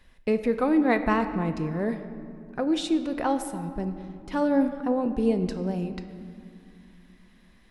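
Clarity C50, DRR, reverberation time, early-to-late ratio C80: 10.5 dB, 8.0 dB, 2.5 s, 11.0 dB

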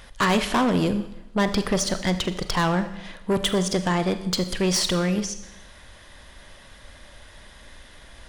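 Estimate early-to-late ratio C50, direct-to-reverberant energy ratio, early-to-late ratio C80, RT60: 11.5 dB, 9.5 dB, 14.0 dB, 0.90 s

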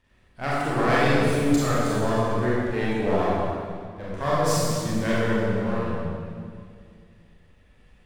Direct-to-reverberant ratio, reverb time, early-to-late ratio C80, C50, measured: −8.5 dB, 2.2 s, −1.5 dB, −4.0 dB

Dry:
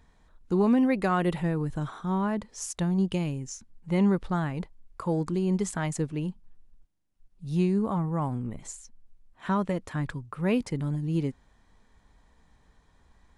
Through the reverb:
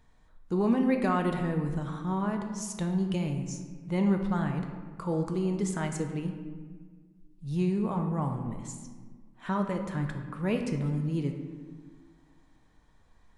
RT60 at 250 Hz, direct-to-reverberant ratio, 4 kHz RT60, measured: 2.2 s, 4.0 dB, 0.90 s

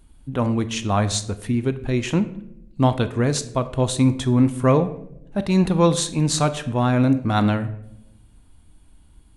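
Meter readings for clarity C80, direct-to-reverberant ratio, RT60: 17.0 dB, 11.0 dB, 0.80 s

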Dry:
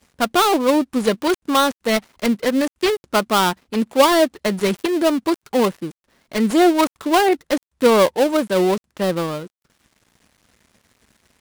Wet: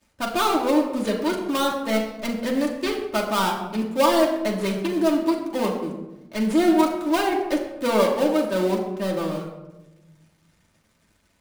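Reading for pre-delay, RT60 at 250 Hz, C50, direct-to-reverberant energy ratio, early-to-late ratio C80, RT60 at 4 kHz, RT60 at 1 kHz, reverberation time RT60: 3 ms, 1.5 s, 6.0 dB, −2.0 dB, 7.5 dB, 0.55 s, 0.90 s, 1.0 s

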